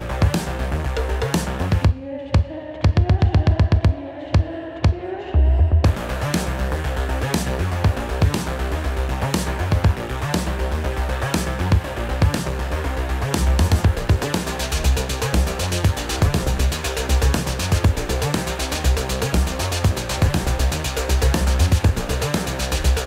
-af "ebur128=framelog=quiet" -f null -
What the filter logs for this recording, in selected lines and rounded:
Integrated loudness:
  I:         -21.1 LUFS
  Threshold: -31.1 LUFS
Loudness range:
  LRA:         2.7 LU
  Threshold: -41.1 LUFS
  LRA low:   -22.6 LUFS
  LRA high:  -19.9 LUFS